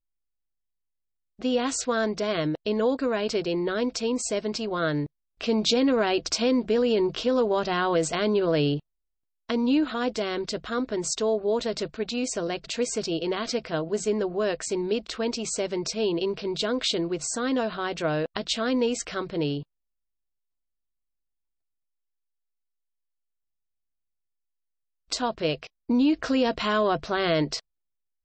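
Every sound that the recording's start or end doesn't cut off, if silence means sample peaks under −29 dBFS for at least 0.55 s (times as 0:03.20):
0:01.42–0:08.78
0:09.50–0:19.60
0:25.12–0:27.59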